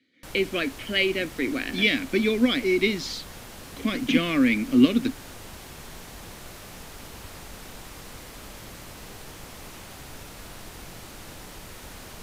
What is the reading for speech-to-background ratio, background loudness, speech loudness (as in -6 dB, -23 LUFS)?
18.0 dB, -42.0 LUFS, -24.0 LUFS